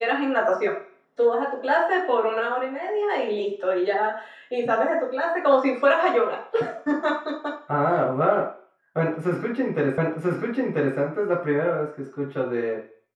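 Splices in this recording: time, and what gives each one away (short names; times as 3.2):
9.98 repeat of the last 0.99 s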